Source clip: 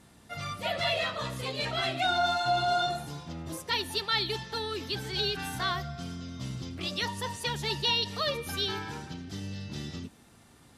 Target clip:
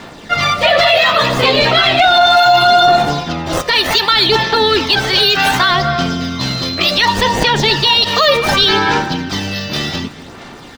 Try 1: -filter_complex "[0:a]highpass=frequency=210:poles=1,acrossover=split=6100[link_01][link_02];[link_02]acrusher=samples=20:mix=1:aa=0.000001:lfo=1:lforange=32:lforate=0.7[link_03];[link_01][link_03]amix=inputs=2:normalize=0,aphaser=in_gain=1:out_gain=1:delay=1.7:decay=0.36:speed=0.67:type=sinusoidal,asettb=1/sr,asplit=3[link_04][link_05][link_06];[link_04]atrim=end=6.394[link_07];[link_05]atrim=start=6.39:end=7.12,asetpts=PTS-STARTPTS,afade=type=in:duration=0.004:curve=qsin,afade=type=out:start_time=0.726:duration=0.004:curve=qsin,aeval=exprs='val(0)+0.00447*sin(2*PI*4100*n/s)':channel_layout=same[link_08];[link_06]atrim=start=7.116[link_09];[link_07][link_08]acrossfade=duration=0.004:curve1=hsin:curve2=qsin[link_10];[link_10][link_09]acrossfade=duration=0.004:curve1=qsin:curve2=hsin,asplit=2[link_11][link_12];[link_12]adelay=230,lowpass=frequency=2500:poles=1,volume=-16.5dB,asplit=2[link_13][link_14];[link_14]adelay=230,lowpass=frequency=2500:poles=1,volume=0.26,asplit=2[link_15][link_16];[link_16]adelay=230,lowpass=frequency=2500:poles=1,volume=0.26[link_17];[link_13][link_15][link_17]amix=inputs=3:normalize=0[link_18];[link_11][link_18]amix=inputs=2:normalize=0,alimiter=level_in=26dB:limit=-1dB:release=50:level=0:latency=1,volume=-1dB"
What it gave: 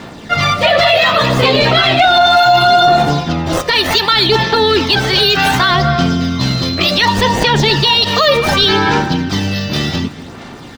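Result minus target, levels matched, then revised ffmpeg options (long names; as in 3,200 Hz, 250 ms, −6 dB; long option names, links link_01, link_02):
250 Hz band +3.5 dB
-filter_complex "[0:a]highpass=frequency=480:poles=1,acrossover=split=6100[link_01][link_02];[link_02]acrusher=samples=20:mix=1:aa=0.000001:lfo=1:lforange=32:lforate=0.7[link_03];[link_01][link_03]amix=inputs=2:normalize=0,aphaser=in_gain=1:out_gain=1:delay=1.7:decay=0.36:speed=0.67:type=sinusoidal,asettb=1/sr,asplit=3[link_04][link_05][link_06];[link_04]atrim=end=6.394[link_07];[link_05]atrim=start=6.39:end=7.12,asetpts=PTS-STARTPTS,afade=type=in:duration=0.004:curve=qsin,afade=type=out:start_time=0.726:duration=0.004:curve=qsin,aeval=exprs='val(0)+0.00447*sin(2*PI*4100*n/s)':channel_layout=same[link_08];[link_06]atrim=start=7.116[link_09];[link_07][link_08]acrossfade=duration=0.004:curve1=hsin:curve2=qsin[link_10];[link_10][link_09]acrossfade=duration=0.004:curve1=qsin:curve2=hsin,asplit=2[link_11][link_12];[link_12]adelay=230,lowpass=frequency=2500:poles=1,volume=-16.5dB,asplit=2[link_13][link_14];[link_14]adelay=230,lowpass=frequency=2500:poles=1,volume=0.26,asplit=2[link_15][link_16];[link_16]adelay=230,lowpass=frequency=2500:poles=1,volume=0.26[link_17];[link_13][link_15][link_17]amix=inputs=3:normalize=0[link_18];[link_11][link_18]amix=inputs=2:normalize=0,alimiter=level_in=26dB:limit=-1dB:release=50:level=0:latency=1,volume=-1dB"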